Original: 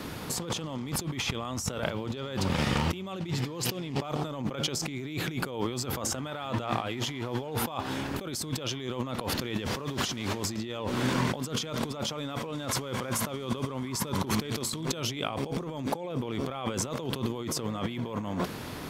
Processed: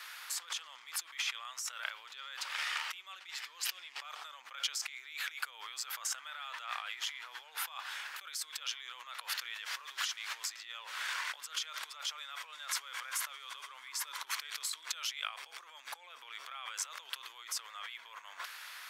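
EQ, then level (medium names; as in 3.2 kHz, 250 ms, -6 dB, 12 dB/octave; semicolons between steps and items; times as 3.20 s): ladder high-pass 1.2 kHz, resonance 30%; +2.5 dB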